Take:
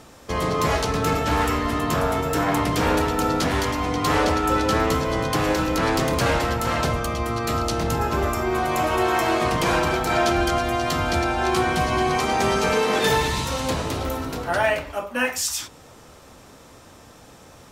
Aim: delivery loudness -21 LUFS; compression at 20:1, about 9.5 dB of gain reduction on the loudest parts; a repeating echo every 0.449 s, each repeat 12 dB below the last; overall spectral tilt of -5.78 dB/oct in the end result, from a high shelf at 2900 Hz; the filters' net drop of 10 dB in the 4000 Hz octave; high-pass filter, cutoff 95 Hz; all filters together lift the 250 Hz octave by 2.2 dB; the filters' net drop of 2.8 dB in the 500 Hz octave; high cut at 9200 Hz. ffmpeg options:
-af "highpass=95,lowpass=9.2k,equalizer=f=250:t=o:g=5,equalizer=f=500:t=o:g=-5,highshelf=f=2.9k:g=-7,equalizer=f=4k:t=o:g=-7.5,acompressor=threshold=-27dB:ratio=20,aecho=1:1:449|898|1347:0.251|0.0628|0.0157,volume=10.5dB"

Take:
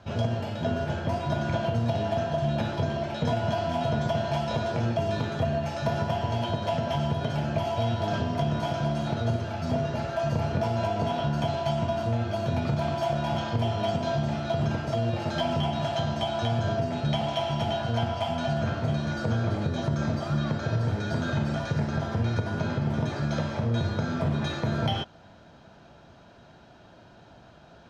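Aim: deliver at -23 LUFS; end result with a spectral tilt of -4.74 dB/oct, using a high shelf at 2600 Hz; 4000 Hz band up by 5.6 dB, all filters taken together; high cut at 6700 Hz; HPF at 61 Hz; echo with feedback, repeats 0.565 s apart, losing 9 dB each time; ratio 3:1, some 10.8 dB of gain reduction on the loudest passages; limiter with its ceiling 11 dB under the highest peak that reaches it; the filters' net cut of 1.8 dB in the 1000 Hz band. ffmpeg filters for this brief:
-af "highpass=61,lowpass=6.7k,equalizer=f=1k:t=o:g=-3.5,highshelf=f=2.6k:g=3.5,equalizer=f=4k:t=o:g=5,acompressor=threshold=-38dB:ratio=3,alimiter=level_in=11dB:limit=-24dB:level=0:latency=1,volume=-11dB,aecho=1:1:565|1130|1695|2260:0.355|0.124|0.0435|0.0152,volume=20dB"

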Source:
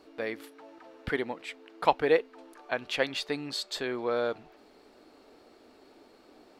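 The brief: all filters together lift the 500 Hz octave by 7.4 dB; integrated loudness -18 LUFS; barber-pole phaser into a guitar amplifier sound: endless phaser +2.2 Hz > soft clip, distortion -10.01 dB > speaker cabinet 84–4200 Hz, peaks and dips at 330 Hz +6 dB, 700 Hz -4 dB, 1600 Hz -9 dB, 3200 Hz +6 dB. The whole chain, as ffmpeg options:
-filter_complex "[0:a]equalizer=f=500:t=o:g=8,asplit=2[a][b];[b]afreqshift=2.2[c];[a][c]amix=inputs=2:normalize=1,asoftclip=threshold=-19.5dB,highpass=84,equalizer=f=330:t=q:w=4:g=6,equalizer=f=700:t=q:w=4:g=-4,equalizer=f=1.6k:t=q:w=4:g=-9,equalizer=f=3.2k:t=q:w=4:g=6,lowpass=f=4.2k:w=0.5412,lowpass=f=4.2k:w=1.3066,volume=15dB"

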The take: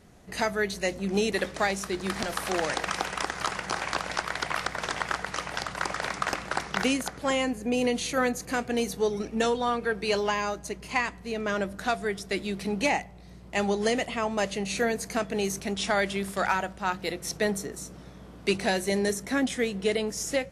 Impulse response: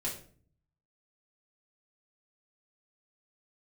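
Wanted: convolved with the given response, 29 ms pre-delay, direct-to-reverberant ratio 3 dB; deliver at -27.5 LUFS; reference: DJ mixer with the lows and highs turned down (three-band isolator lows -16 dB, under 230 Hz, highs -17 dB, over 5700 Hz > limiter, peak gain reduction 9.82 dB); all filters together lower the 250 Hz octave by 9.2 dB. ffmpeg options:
-filter_complex "[0:a]equalizer=f=250:t=o:g=-6,asplit=2[a][b];[1:a]atrim=start_sample=2205,adelay=29[c];[b][c]afir=irnorm=-1:irlink=0,volume=-5.5dB[d];[a][d]amix=inputs=2:normalize=0,acrossover=split=230 5700:gain=0.158 1 0.141[e][f][g];[e][f][g]amix=inputs=3:normalize=0,volume=4dB,alimiter=limit=-16.5dB:level=0:latency=1"

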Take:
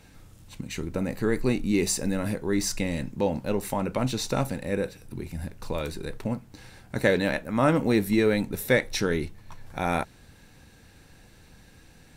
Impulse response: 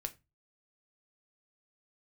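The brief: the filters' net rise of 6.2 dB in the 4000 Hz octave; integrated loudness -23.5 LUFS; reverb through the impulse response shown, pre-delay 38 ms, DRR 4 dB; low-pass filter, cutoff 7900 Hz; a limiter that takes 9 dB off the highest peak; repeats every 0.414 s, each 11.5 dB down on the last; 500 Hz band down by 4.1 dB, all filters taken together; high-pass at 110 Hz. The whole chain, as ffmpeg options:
-filter_complex "[0:a]highpass=110,lowpass=7.9k,equalizer=f=500:t=o:g=-5,equalizer=f=4k:t=o:g=7.5,alimiter=limit=-15.5dB:level=0:latency=1,aecho=1:1:414|828|1242:0.266|0.0718|0.0194,asplit=2[a][b];[1:a]atrim=start_sample=2205,adelay=38[c];[b][c]afir=irnorm=-1:irlink=0,volume=-2.5dB[d];[a][d]amix=inputs=2:normalize=0,volume=5dB"

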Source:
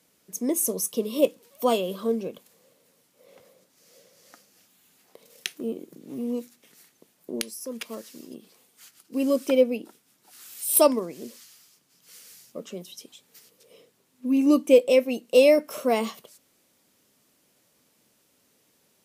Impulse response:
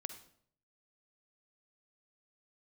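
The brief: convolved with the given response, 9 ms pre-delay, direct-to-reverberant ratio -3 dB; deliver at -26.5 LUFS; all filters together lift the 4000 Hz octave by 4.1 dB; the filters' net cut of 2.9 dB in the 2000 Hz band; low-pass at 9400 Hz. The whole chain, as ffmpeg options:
-filter_complex "[0:a]lowpass=9.4k,equalizer=f=2k:t=o:g=-9,equalizer=f=4k:t=o:g=9,asplit=2[a][b];[1:a]atrim=start_sample=2205,adelay=9[c];[b][c]afir=irnorm=-1:irlink=0,volume=5.5dB[d];[a][d]amix=inputs=2:normalize=0,volume=-5dB"

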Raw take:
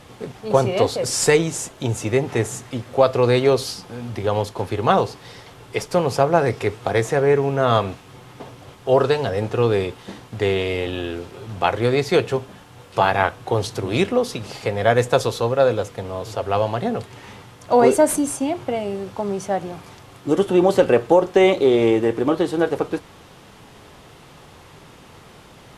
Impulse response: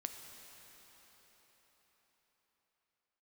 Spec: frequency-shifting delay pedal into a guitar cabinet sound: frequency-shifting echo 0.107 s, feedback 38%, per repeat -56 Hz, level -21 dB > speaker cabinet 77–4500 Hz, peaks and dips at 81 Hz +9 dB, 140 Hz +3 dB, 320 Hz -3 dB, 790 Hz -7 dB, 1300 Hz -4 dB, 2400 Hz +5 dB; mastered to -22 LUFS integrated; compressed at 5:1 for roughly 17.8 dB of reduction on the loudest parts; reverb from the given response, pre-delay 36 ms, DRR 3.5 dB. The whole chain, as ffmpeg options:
-filter_complex "[0:a]acompressor=threshold=-31dB:ratio=5,asplit=2[a][b];[1:a]atrim=start_sample=2205,adelay=36[c];[b][c]afir=irnorm=-1:irlink=0,volume=-1.5dB[d];[a][d]amix=inputs=2:normalize=0,asplit=4[e][f][g][h];[f]adelay=107,afreqshift=-56,volume=-21dB[i];[g]adelay=214,afreqshift=-112,volume=-29.4dB[j];[h]adelay=321,afreqshift=-168,volume=-37.8dB[k];[e][i][j][k]amix=inputs=4:normalize=0,highpass=77,equalizer=f=81:t=q:w=4:g=9,equalizer=f=140:t=q:w=4:g=3,equalizer=f=320:t=q:w=4:g=-3,equalizer=f=790:t=q:w=4:g=-7,equalizer=f=1.3k:t=q:w=4:g=-4,equalizer=f=2.4k:t=q:w=4:g=5,lowpass=f=4.5k:w=0.5412,lowpass=f=4.5k:w=1.3066,volume=12dB"

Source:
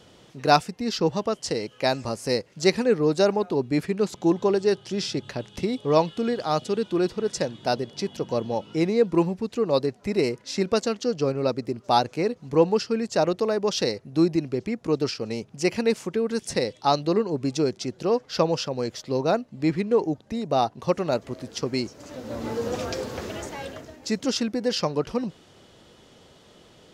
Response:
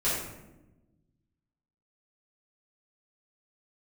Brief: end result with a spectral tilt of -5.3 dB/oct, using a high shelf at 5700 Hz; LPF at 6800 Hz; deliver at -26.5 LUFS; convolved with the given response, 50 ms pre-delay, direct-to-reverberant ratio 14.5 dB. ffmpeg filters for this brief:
-filter_complex "[0:a]lowpass=6.8k,highshelf=f=5.7k:g=-8.5,asplit=2[a][b];[1:a]atrim=start_sample=2205,adelay=50[c];[b][c]afir=irnorm=-1:irlink=0,volume=-24.5dB[d];[a][d]amix=inputs=2:normalize=0,volume=-1dB"

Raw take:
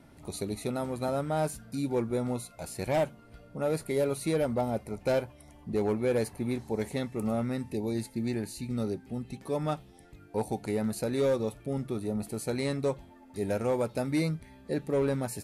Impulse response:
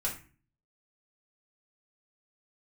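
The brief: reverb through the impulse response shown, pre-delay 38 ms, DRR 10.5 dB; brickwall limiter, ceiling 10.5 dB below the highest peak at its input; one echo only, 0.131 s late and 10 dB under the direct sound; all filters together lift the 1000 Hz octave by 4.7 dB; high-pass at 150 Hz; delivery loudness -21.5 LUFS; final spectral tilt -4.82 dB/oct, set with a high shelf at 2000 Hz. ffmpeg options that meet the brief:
-filter_complex "[0:a]highpass=150,equalizer=f=1k:t=o:g=5.5,highshelf=f=2k:g=4.5,alimiter=level_in=1dB:limit=-24dB:level=0:latency=1,volume=-1dB,aecho=1:1:131:0.316,asplit=2[a][b];[1:a]atrim=start_sample=2205,adelay=38[c];[b][c]afir=irnorm=-1:irlink=0,volume=-14.5dB[d];[a][d]amix=inputs=2:normalize=0,volume=14dB"

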